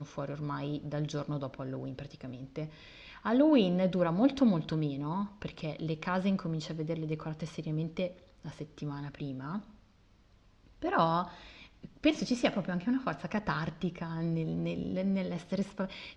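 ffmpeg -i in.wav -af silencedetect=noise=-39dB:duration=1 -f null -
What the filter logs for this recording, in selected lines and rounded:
silence_start: 9.59
silence_end: 10.82 | silence_duration: 1.23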